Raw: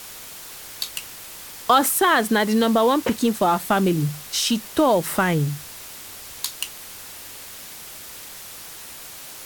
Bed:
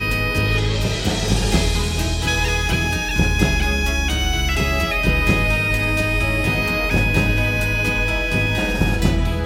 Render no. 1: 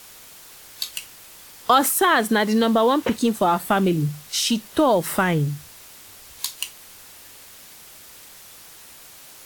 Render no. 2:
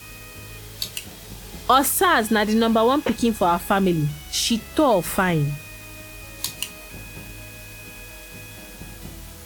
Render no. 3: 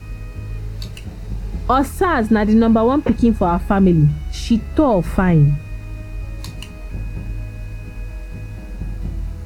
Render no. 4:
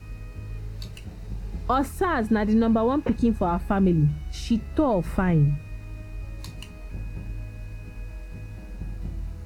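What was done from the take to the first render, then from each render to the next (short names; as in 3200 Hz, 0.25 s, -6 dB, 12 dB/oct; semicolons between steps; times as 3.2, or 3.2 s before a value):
noise print and reduce 6 dB
add bed -21.5 dB
RIAA curve playback; notch 3300 Hz, Q 5.7
gain -7.5 dB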